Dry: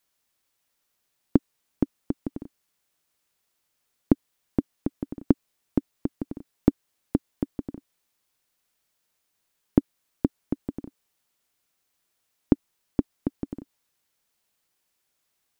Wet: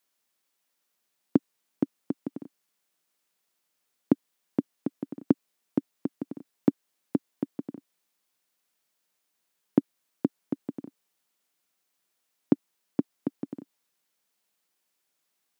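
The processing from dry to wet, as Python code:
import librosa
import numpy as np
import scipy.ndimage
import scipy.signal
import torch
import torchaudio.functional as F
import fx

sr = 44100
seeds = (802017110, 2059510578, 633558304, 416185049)

y = scipy.signal.sosfilt(scipy.signal.butter(4, 150.0, 'highpass', fs=sr, output='sos'), x)
y = F.gain(torch.from_numpy(y), -2.0).numpy()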